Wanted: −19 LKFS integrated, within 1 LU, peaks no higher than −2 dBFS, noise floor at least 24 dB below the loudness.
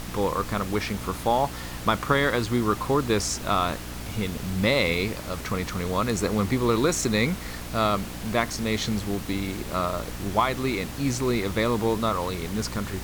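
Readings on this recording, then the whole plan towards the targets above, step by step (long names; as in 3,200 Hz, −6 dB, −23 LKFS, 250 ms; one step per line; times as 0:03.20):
mains hum 60 Hz; hum harmonics up to 300 Hz; level of the hum −37 dBFS; background noise floor −36 dBFS; target noise floor −50 dBFS; integrated loudness −26.0 LKFS; sample peak −6.5 dBFS; target loudness −19.0 LKFS
→ hum removal 60 Hz, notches 5
noise reduction from a noise print 14 dB
level +7 dB
brickwall limiter −2 dBFS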